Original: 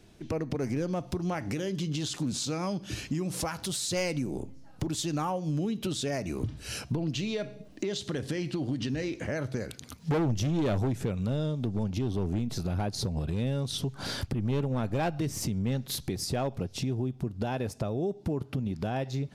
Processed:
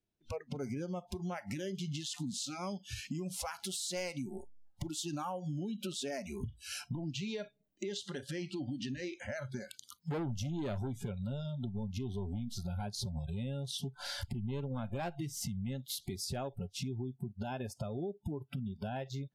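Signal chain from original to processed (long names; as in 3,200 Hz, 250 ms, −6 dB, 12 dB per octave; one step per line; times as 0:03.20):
noise reduction from a noise print of the clip's start 28 dB
downward compressor 4 to 1, threshold −31 dBFS, peak gain reduction 6 dB
level −4 dB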